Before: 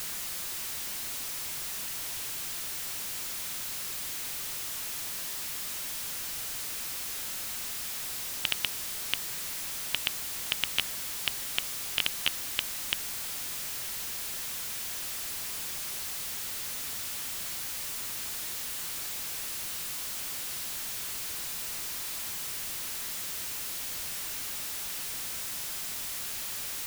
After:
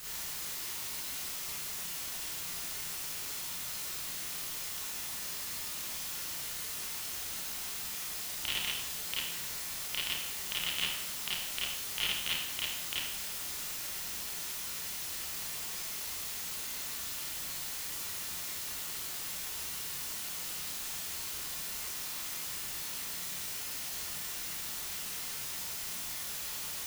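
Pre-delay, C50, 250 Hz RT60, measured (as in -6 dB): 28 ms, -2.0 dB, 0.75 s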